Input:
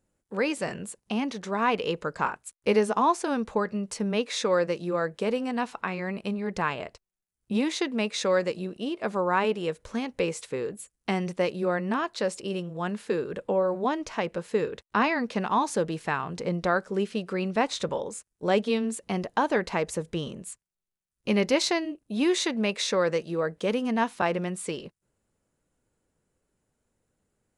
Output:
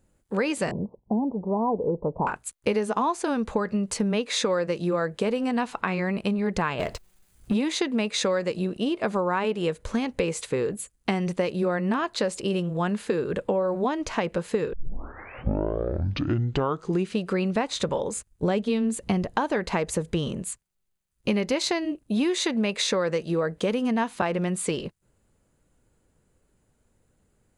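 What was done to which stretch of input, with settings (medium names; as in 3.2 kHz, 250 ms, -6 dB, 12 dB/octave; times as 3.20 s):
0.71–2.27 s: steep low-pass 980 Hz 72 dB/octave
6.79–7.54 s: power-law waveshaper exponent 0.7
14.73 s: tape start 2.47 s
18.16–19.37 s: bass shelf 160 Hz +11 dB
whole clip: bass shelf 120 Hz +7.5 dB; band-stop 5.5 kHz, Q 13; compression, threshold -28 dBFS; trim +6.5 dB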